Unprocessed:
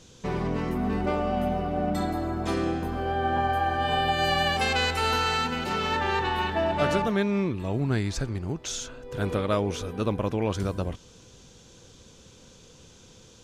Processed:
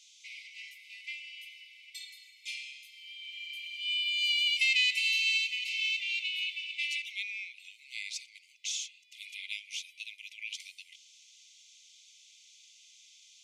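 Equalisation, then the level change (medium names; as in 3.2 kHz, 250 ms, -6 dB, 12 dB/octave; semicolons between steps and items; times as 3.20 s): treble shelf 11 kHz -12 dB; dynamic bell 2.6 kHz, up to +6 dB, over -47 dBFS, Q 3.1; brick-wall FIR high-pass 2 kHz; 0.0 dB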